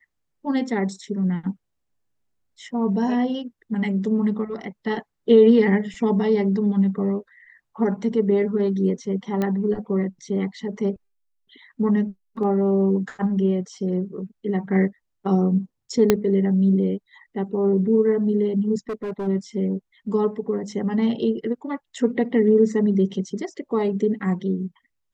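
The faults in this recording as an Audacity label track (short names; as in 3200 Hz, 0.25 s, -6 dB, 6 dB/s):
9.420000	9.420000	pop -13 dBFS
16.100000	16.100000	pop -2 dBFS
18.890000	19.280000	clipped -24.5 dBFS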